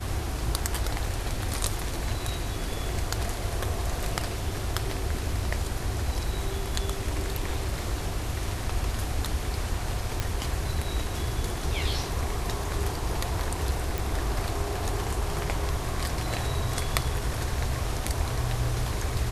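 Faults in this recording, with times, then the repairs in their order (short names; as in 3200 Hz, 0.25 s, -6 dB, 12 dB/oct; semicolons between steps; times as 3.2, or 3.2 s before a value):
10.2 pop -12 dBFS
13.98 pop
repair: de-click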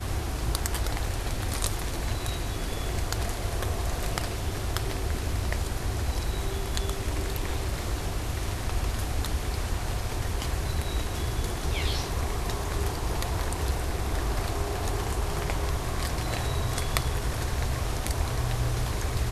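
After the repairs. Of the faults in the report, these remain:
none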